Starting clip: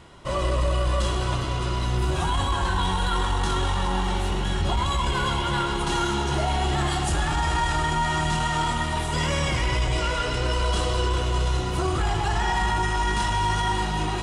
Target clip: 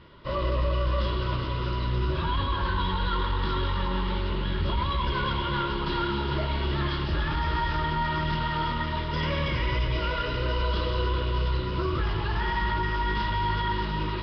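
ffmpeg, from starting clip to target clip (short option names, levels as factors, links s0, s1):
-af "asuperstop=centerf=760:order=4:qfactor=3.4,volume=0.75" -ar 11025 -c:a nellymoser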